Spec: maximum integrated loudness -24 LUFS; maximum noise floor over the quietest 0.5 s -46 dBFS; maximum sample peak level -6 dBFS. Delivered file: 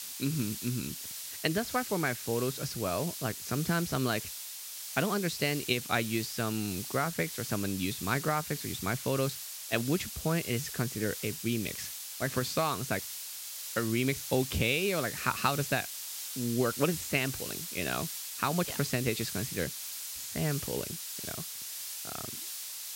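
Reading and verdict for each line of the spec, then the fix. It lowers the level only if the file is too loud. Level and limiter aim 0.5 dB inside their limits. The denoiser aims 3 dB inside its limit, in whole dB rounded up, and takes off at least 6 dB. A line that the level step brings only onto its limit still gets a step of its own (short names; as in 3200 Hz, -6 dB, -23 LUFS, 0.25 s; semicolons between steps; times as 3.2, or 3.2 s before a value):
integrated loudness -32.5 LUFS: OK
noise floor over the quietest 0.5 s -42 dBFS: fail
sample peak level -13.0 dBFS: OK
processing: denoiser 7 dB, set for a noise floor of -42 dBFS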